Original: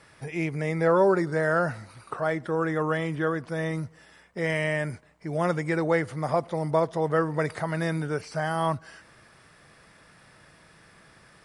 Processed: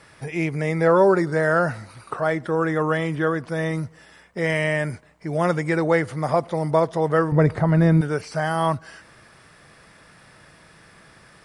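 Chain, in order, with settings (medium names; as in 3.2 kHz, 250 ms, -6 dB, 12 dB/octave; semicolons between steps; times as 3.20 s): 7.32–8.01 s: tilt EQ -3.5 dB/octave; trim +4.5 dB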